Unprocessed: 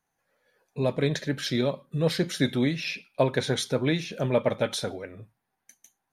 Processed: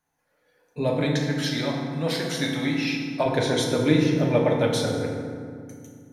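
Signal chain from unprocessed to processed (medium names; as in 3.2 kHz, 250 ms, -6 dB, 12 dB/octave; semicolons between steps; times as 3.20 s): 1.00–3.26 s: resonant low shelf 580 Hz -7.5 dB, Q 1.5; FDN reverb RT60 2.2 s, low-frequency decay 1.6×, high-frequency decay 0.5×, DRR -1.5 dB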